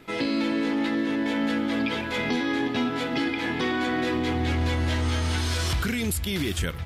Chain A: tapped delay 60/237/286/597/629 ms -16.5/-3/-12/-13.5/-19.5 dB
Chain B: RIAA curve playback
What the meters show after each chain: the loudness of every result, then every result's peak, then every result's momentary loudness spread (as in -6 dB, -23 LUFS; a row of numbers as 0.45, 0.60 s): -24.5, -18.0 LUFS; -12.5, -3.5 dBFS; 4, 9 LU